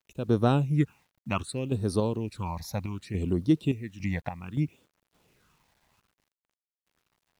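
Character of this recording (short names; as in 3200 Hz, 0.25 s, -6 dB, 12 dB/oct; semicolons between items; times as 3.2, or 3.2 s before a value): phasing stages 8, 0.65 Hz, lowest notch 370–2400 Hz; random-step tremolo, depth 75%; a quantiser's noise floor 12-bit, dither none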